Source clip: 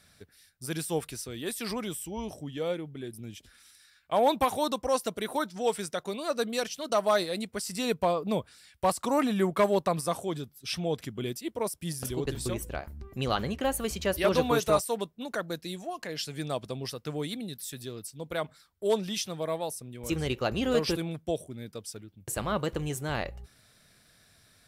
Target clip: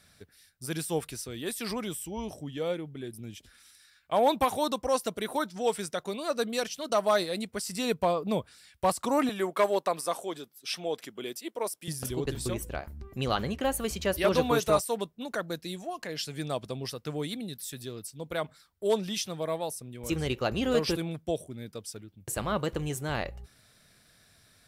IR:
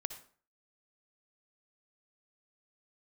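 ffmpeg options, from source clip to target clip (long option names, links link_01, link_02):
-filter_complex "[0:a]asettb=1/sr,asplit=3[link_01][link_02][link_03];[link_01]atrim=end=9.294[link_04];[link_02]atrim=start=9.29:end=11.88,asetpts=PTS-STARTPTS,afade=type=in:duration=0.004:curve=qsin,afade=type=out:start_time=2.586:duration=0.004:curve=qsin,highpass=360[link_05];[link_03]atrim=start=11.876[link_06];[link_04][link_05]acrossfade=duration=0.004:curve1=hsin:curve2=qsin[link_07];[link_07][link_06]acrossfade=duration=0.004:curve1=qsin:curve2=hsin"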